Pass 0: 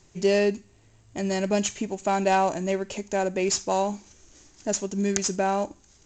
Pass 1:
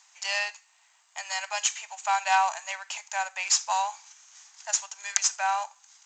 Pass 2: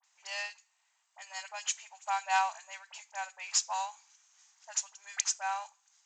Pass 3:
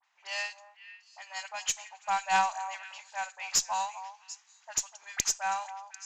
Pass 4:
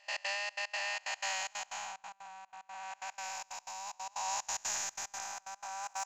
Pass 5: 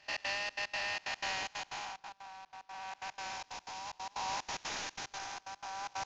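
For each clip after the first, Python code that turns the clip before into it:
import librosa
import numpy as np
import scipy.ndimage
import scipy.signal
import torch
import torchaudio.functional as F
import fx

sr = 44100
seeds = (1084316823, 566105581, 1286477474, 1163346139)

y1 = scipy.signal.sosfilt(scipy.signal.butter(8, 800.0, 'highpass', fs=sr, output='sos'), x)
y1 = y1 * 10.0 ** (3.5 / 20.0)
y2 = fx.dispersion(y1, sr, late='highs', ms=41.0, hz=2000.0)
y2 = fx.upward_expand(y2, sr, threshold_db=-33.0, expansion=1.5)
y2 = y2 * 10.0 ** (-5.0 / 20.0)
y3 = fx.diode_clip(y2, sr, knee_db=-17.5)
y3 = fx.env_lowpass(y3, sr, base_hz=2700.0, full_db=-33.0)
y3 = fx.echo_stepped(y3, sr, ms=248, hz=840.0, octaves=1.4, feedback_pct=70, wet_db=-11.0)
y3 = y3 * 10.0 ** (3.5 / 20.0)
y4 = fx.spec_blur(y3, sr, span_ms=721.0)
y4 = fx.over_compress(y4, sr, threshold_db=-49.0, ratio=-1.0)
y4 = fx.step_gate(y4, sr, bpm=184, pattern='.x.xxx.x.xxx', floor_db=-24.0, edge_ms=4.5)
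y4 = y4 * 10.0 ** (8.5 / 20.0)
y5 = fx.cvsd(y4, sr, bps=32000)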